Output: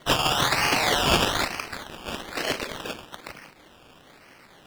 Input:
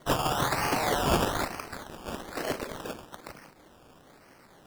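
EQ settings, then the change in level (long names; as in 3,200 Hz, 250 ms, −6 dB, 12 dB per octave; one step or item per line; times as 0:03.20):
parametric band 2,800 Hz +9 dB 1.5 octaves
dynamic equaliser 5,400 Hz, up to +4 dB, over −41 dBFS, Q 0.88
+1.5 dB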